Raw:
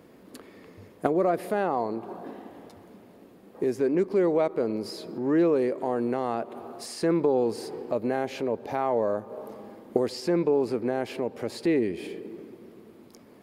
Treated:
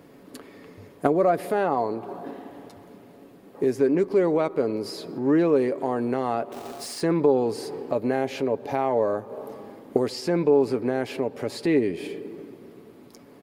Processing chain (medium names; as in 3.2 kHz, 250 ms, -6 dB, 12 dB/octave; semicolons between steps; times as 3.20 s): comb 7.1 ms, depth 34%; 6.52–7.01 s: companded quantiser 4-bit; trim +2.5 dB